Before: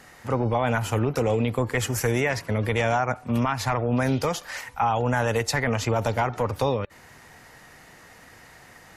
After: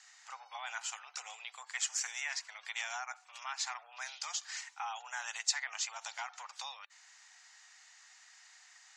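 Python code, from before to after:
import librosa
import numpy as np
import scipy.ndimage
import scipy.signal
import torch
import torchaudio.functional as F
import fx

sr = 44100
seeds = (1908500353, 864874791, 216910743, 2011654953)

y = scipy.signal.sosfilt(scipy.signal.cheby1(4, 1.0, [750.0, 7300.0], 'bandpass', fs=sr, output='sos'), x)
y = np.diff(y, prepend=0.0)
y = F.gain(torch.from_numpy(y), 1.0).numpy()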